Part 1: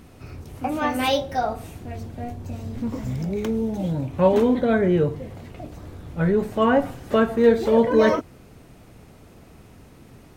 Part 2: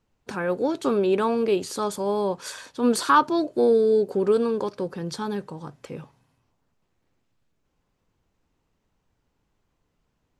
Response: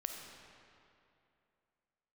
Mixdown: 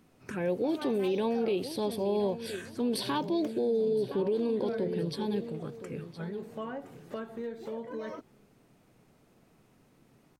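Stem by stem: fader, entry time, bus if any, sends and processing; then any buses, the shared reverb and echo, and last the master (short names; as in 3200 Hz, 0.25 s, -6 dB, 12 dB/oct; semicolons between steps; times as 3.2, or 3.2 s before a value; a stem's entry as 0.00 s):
-14.0 dB, 0.00 s, no send, no echo send, HPF 120 Hz 24 dB/oct; compressor 6:1, threshold -21 dBFS, peak gain reduction 10.5 dB
-1.5 dB, 0.00 s, no send, echo send -14.5 dB, envelope phaser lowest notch 500 Hz, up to 1300 Hz, full sweep at -27.5 dBFS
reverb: off
echo: feedback echo 1.017 s, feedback 26%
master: limiter -22 dBFS, peak gain reduction 9 dB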